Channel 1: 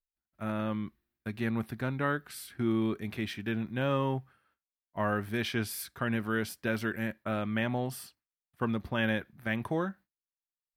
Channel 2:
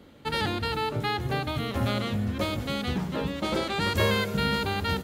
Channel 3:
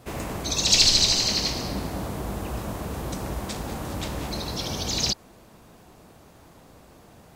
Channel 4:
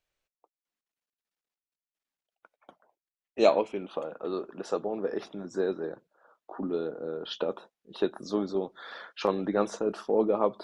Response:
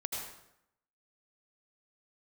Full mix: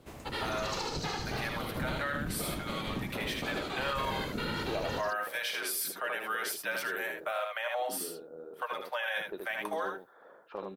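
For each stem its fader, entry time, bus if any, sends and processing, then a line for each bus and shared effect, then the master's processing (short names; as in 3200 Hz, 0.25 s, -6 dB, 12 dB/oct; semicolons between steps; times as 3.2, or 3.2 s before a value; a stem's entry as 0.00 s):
+1.5 dB, 0.00 s, no send, echo send -6 dB, steep high-pass 510 Hz 96 dB/oct; high shelf 6000 Hz +6 dB; comb 6.5 ms, depth 54%
-8.5 dB, 0.00 s, no send, echo send -6 dB, whisperiser
-12.5 dB, 0.00 s, no send, no echo send, auto duck -10 dB, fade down 0.30 s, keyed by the first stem
-13.5 dB, 1.30 s, no send, echo send -3.5 dB, low-pass opened by the level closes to 310 Hz, open at -23.5 dBFS; bell 230 Hz -4 dB; upward compressor, threshold -29 dBFS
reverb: off
echo: echo 78 ms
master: limiter -24 dBFS, peak gain reduction 9 dB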